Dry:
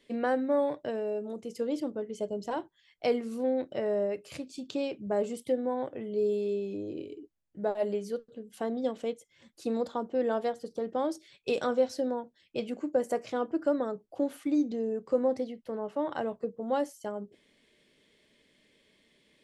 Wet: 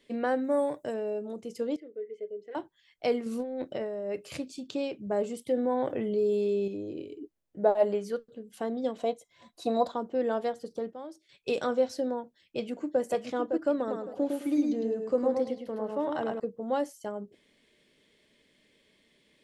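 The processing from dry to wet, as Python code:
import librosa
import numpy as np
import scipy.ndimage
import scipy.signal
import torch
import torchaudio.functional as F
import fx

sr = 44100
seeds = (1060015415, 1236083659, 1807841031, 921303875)

y = fx.high_shelf_res(x, sr, hz=5800.0, db=12.0, q=1.5, at=(0.44, 0.94))
y = fx.double_bandpass(y, sr, hz=940.0, octaves=2.2, at=(1.76, 2.55))
y = fx.over_compress(y, sr, threshold_db=-33.0, ratio=-1.0, at=(3.26, 4.54))
y = fx.env_flatten(y, sr, amount_pct=50, at=(5.52, 6.68))
y = fx.peak_eq(y, sr, hz=fx.line((7.2, 310.0), (8.18, 1500.0)), db=8.0, octaves=1.7, at=(7.2, 8.18), fade=0.02)
y = fx.small_body(y, sr, hz=(710.0, 1000.0, 3900.0), ring_ms=45, db=17, at=(8.98, 9.92))
y = fx.echo_throw(y, sr, start_s=12.21, length_s=0.8, ms=560, feedback_pct=30, wet_db=-6.0)
y = fx.echo_feedback(y, sr, ms=106, feedback_pct=25, wet_db=-3.5, at=(13.77, 16.4))
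y = fx.edit(y, sr, fx.fade_down_up(start_s=10.63, length_s=0.95, db=-12.0, fade_s=0.29, curve='log'), tone=tone)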